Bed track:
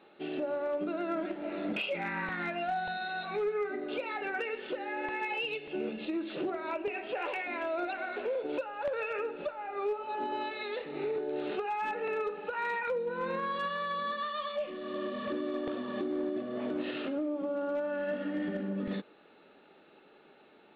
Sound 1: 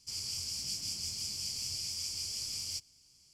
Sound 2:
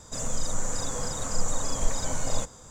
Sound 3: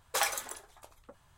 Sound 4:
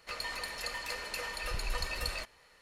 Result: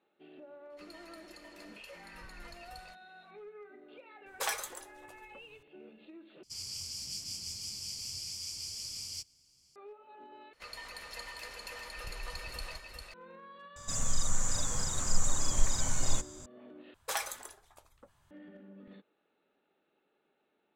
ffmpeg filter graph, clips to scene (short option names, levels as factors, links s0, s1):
-filter_complex "[4:a]asplit=2[s0][s1];[3:a]asplit=2[s2][s3];[0:a]volume=0.126[s4];[s2]flanger=delay=5.3:depth=3:regen=53:speed=1.8:shape=sinusoidal[s5];[s1]aecho=1:1:400:0.596[s6];[2:a]equalizer=f=460:t=o:w=2:g=-11[s7];[s4]asplit=4[s8][s9][s10][s11];[s8]atrim=end=6.434[s12];[1:a]atrim=end=3.33,asetpts=PTS-STARTPTS,volume=0.708[s13];[s9]atrim=start=9.756:end=10.534[s14];[s6]atrim=end=2.61,asetpts=PTS-STARTPTS,volume=0.422[s15];[s10]atrim=start=13.136:end=16.944[s16];[s3]atrim=end=1.37,asetpts=PTS-STARTPTS,volume=0.562[s17];[s11]atrim=start=18.306[s18];[s0]atrim=end=2.61,asetpts=PTS-STARTPTS,volume=0.15,afade=t=in:d=0.004:c=hsin,afade=t=out:st=2.606:d=0.004:c=hsin,adelay=700[s19];[s5]atrim=end=1.37,asetpts=PTS-STARTPTS,afade=t=in:d=0.004:c=hsin,afade=t=out:st=1.366:d=0.004:c=hsin,adelay=4260[s20];[s7]atrim=end=2.7,asetpts=PTS-STARTPTS,volume=0.944,afade=t=in:d=0.004:c=hsin,afade=t=out:st=2.696:d=0.004:c=hsin,adelay=13760[s21];[s12][s13]acrossfade=d=0.004:c1=hsin:c2=hsin[s22];[s22][s14]acrossfade=d=0.004:c1=hsin:c2=hsin[s23];[s23][s15]acrossfade=d=0.004:c1=hsin:c2=hsin[s24];[s24][s16]acrossfade=d=0.004:c1=hsin:c2=hsin[s25];[s25][s17]acrossfade=d=0.004:c1=hsin:c2=hsin[s26];[s26][s18]acrossfade=d=0.004:c1=hsin:c2=hsin[s27];[s27][s19][s20][s21]amix=inputs=4:normalize=0"